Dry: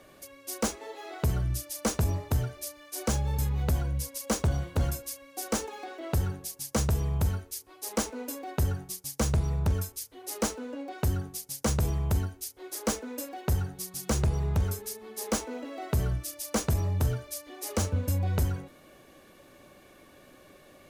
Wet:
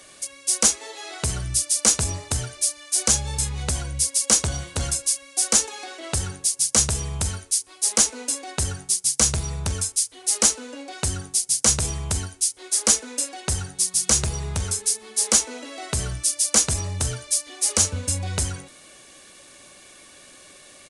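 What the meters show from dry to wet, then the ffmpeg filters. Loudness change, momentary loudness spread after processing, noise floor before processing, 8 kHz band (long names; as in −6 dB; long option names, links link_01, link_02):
+9.5 dB, 10 LU, −56 dBFS, +18.0 dB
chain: -af "crystalizer=i=9:c=0,aresample=22050,aresample=44100,volume=-1dB"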